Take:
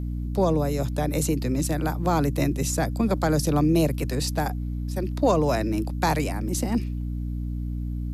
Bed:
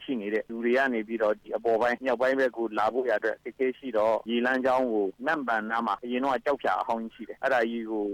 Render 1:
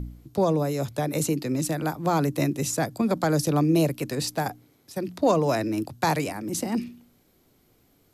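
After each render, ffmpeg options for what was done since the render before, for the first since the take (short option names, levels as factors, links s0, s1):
-af "bandreject=f=60:t=h:w=4,bandreject=f=120:t=h:w=4,bandreject=f=180:t=h:w=4,bandreject=f=240:t=h:w=4,bandreject=f=300:t=h:w=4"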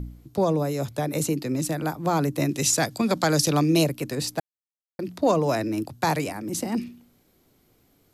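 -filter_complex "[0:a]asettb=1/sr,asplit=3[s0][s1][s2];[s0]atrim=end=2.494[s3];[s1]atrim=start=2.49:end=3.84,asetpts=PTS-STARTPTS,afade=t=in:d=0.004:c=qsin,afade=t=out:st=1.346:d=0.004:c=qsin,equalizer=f=4500:t=o:w=2.9:g=9.5[s4];[s2]atrim=start=3.836[s5];[s3][s4]acrossfade=d=0.004:c1=hsin:c2=qsin[s6];[s6][s5]acrossfade=d=0.004:c1=qsin:c2=hsin,asplit=3[s7][s8][s9];[s7]atrim=end=4.4,asetpts=PTS-STARTPTS,afade=t=out:st=4.396:d=0.004:c=hsin[s10];[s8]atrim=start=4.4:end=4.99,asetpts=PTS-STARTPTS,volume=0[s11];[s9]atrim=start=4.99,asetpts=PTS-STARTPTS,afade=t=in:d=0.004:c=hsin[s12];[s10][s11][s12]concat=n=3:v=0:a=1"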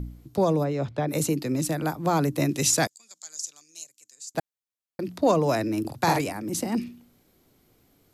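-filter_complex "[0:a]asplit=3[s0][s1][s2];[s0]afade=t=out:st=0.63:d=0.02[s3];[s1]lowpass=3200,afade=t=in:st=0.63:d=0.02,afade=t=out:st=1.07:d=0.02[s4];[s2]afade=t=in:st=1.07:d=0.02[s5];[s3][s4][s5]amix=inputs=3:normalize=0,asettb=1/sr,asplit=3[s6][s7][s8];[s6]atrim=end=2.874[s9];[s7]atrim=start=2.87:end=4.35,asetpts=PTS-STARTPTS,afade=t=in:d=0.004:c=qsin,afade=t=out:st=1.476:d=0.004:c=qsin,bandpass=f=7000:t=q:w=7[s10];[s8]atrim=start=4.346[s11];[s9][s10]acrossfade=d=0.004:c1=hsin:c2=qsin[s12];[s12][s11]acrossfade=d=0.004:c1=qsin:c2=hsin,asettb=1/sr,asplit=3[s13][s14][s15];[s13]atrim=end=5.804[s16];[s14]atrim=start=5.8:end=6.21,asetpts=PTS-STARTPTS,afade=t=in:d=0.004:c=qsin,afade=t=out:st=0.406:d=0.004:c=qsin,asplit=2[s17][s18];[s18]adelay=47,volume=0.631[s19];[s17][s19]amix=inputs=2:normalize=0,atrim=end_sample=18081[s20];[s15]atrim=start=6.206[s21];[s16][s20]acrossfade=d=0.004:c1=hsin:c2=qsin[s22];[s22][s21]acrossfade=d=0.004:c1=qsin:c2=hsin"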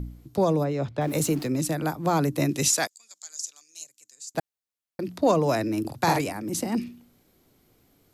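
-filter_complex "[0:a]asettb=1/sr,asplit=3[s0][s1][s2];[s0]atrim=end=1.014[s3];[s1]atrim=start=1.01:end=1.47,asetpts=PTS-STARTPTS,afade=t=in:d=0.004:c=qsin,afade=t=out:st=0.456:d=0.004:c=qsin,aeval=exprs='val(0)+0.5*0.0119*sgn(val(0))':c=same[s4];[s2]atrim=start=1.466[s5];[s3][s4]acrossfade=d=0.004:c1=hsin:c2=qsin[s6];[s6][s5]acrossfade=d=0.004:c1=qsin:c2=hsin,asettb=1/sr,asplit=3[s7][s8][s9];[s7]atrim=end=2.684[s10];[s8]atrim=start=2.68:end=3.81,asetpts=PTS-STARTPTS,afade=t=in:d=0.004:c=qsin,afade=t=out:st=1.126:d=0.004:c=qsin,highpass=f=680:p=1[s11];[s9]atrim=start=3.806[s12];[s10][s11]acrossfade=d=0.004:c1=hsin:c2=qsin[s13];[s13][s12]acrossfade=d=0.004:c1=qsin:c2=hsin"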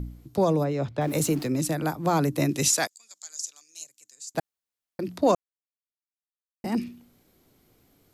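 -filter_complex "[0:a]asplit=3[s0][s1][s2];[s0]atrim=end=5.35,asetpts=PTS-STARTPTS,afade=t=out:st=5.346:d=0.004:c=hsin[s3];[s1]atrim=start=5.35:end=6.64,asetpts=PTS-STARTPTS,volume=0[s4];[s2]atrim=start=6.64,asetpts=PTS-STARTPTS,afade=t=in:d=0.004:c=hsin[s5];[s3][s4][s5]concat=n=3:v=0:a=1"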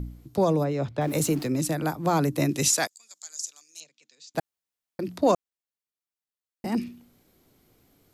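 -filter_complex "[0:a]asettb=1/sr,asplit=3[s0][s1][s2];[s0]atrim=end=3.804[s3];[s1]atrim=start=3.8:end=4.34,asetpts=PTS-STARTPTS,afade=t=in:d=0.004:c=qsin,afade=t=out:st=0.536:d=0.004:c=qsin,highpass=150,equalizer=f=150:t=q:w=4:g=7,equalizer=f=230:t=q:w=4:g=7,equalizer=f=480:t=q:w=4:g=5,equalizer=f=2400:t=q:w=4:g=5,equalizer=f=3500:t=q:w=4:g=6,lowpass=f=5000:w=0.5412,lowpass=f=5000:w=1.3066[s4];[s2]atrim=start=4.336[s5];[s3][s4]acrossfade=d=0.004:c1=hsin:c2=qsin[s6];[s6][s5]acrossfade=d=0.004:c1=qsin:c2=hsin"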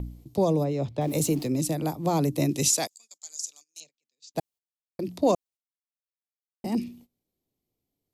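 -af "agate=range=0.0891:threshold=0.00355:ratio=16:detection=peak,equalizer=f=1500:w=1.8:g=-13.5"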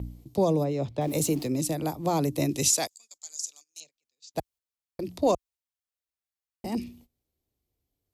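-af "highpass=48,asubboost=boost=8:cutoff=61"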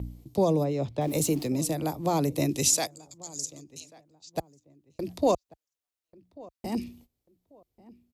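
-filter_complex "[0:a]asplit=2[s0][s1];[s1]adelay=1140,lowpass=f=1500:p=1,volume=0.0841,asplit=2[s2][s3];[s3]adelay=1140,lowpass=f=1500:p=1,volume=0.3[s4];[s0][s2][s4]amix=inputs=3:normalize=0"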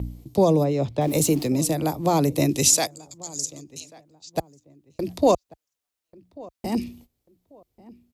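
-af "volume=1.88"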